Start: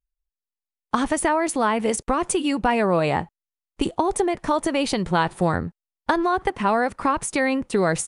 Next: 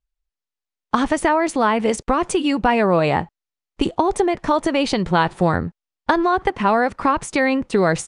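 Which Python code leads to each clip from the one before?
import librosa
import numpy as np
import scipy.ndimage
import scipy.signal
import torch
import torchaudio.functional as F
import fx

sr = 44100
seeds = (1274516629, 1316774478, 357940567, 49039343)

y = scipy.signal.sosfilt(scipy.signal.butter(2, 6400.0, 'lowpass', fs=sr, output='sos'), x)
y = y * librosa.db_to_amplitude(3.5)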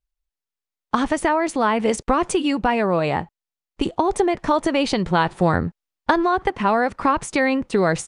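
y = fx.rider(x, sr, range_db=4, speed_s=0.5)
y = y * librosa.db_to_amplitude(-1.0)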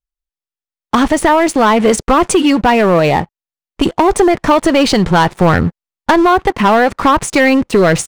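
y = fx.leveller(x, sr, passes=3)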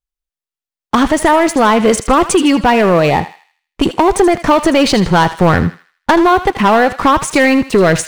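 y = fx.echo_thinned(x, sr, ms=79, feedback_pct=44, hz=1100.0, wet_db=-11.0)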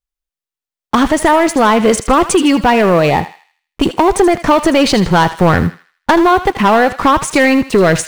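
y = fx.block_float(x, sr, bits=7)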